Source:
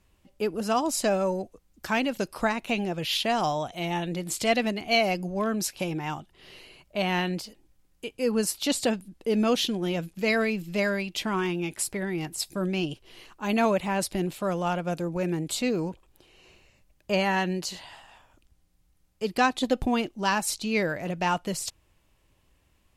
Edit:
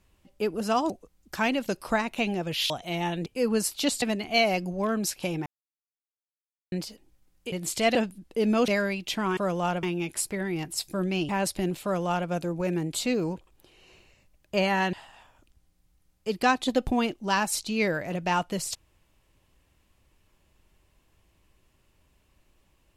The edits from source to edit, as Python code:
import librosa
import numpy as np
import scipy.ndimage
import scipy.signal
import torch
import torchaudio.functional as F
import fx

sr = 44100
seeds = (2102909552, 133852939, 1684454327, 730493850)

y = fx.edit(x, sr, fx.cut(start_s=0.9, length_s=0.51),
    fx.cut(start_s=3.21, length_s=0.39),
    fx.swap(start_s=4.16, length_s=0.43, other_s=8.09, other_length_s=0.76),
    fx.silence(start_s=6.03, length_s=1.26),
    fx.cut(start_s=9.58, length_s=1.18),
    fx.cut(start_s=12.91, length_s=0.94),
    fx.duplicate(start_s=14.39, length_s=0.46, to_s=11.45),
    fx.cut(start_s=17.49, length_s=0.39), tone=tone)